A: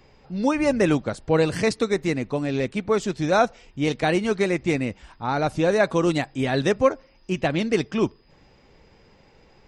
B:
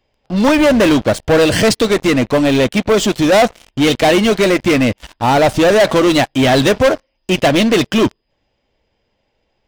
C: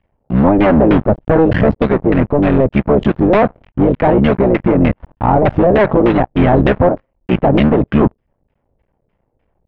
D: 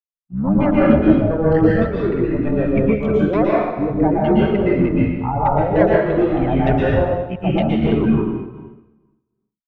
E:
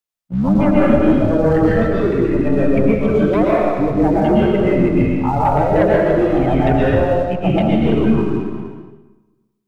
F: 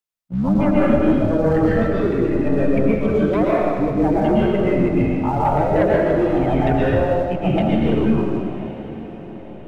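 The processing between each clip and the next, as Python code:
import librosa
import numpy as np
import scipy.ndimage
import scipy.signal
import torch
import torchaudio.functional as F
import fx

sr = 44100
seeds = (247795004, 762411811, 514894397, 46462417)

y1 = fx.graphic_eq_31(x, sr, hz=(160, 400, 630, 1250, 3150), db=(-9, -3, 6, -4, 8))
y1 = fx.leveller(y1, sr, passes=5)
y1 = F.gain(torch.from_numpy(y1), -2.0).numpy()
y2 = fx.cycle_switch(y1, sr, every=3, mode='muted')
y2 = fx.filter_lfo_lowpass(y2, sr, shape='saw_down', hz=3.3, low_hz=480.0, high_hz=2700.0, q=1.1)
y2 = fx.bass_treble(y2, sr, bass_db=7, treble_db=-14)
y3 = fx.bin_expand(y2, sr, power=2.0)
y3 = fx.rev_plate(y3, sr, seeds[0], rt60_s=1.2, hf_ratio=0.9, predelay_ms=105, drr_db=-6.5)
y3 = fx.am_noise(y3, sr, seeds[1], hz=5.7, depth_pct=65)
y3 = F.gain(torch.from_numpy(y3), -3.5).numpy()
y4 = fx.leveller(y3, sr, passes=1)
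y4 = fx.rev_freeverb(y4, sr, rt60_s=0.69, hf_ratio=0.85, predelay_ms=65, drr_db=6.0)
y4 = fx.band_squash(y4, sr, depth_pct=40)
y4 = F.gain(torch.from_numpy(y4), -2.5).numpy()
y5 = fx.echo_diffused(y4, sr, ms=964, feedback_pct=47, wet_db=-15)
y5 = F.gain(torch.from_numpy(y5), -3.0).numpy()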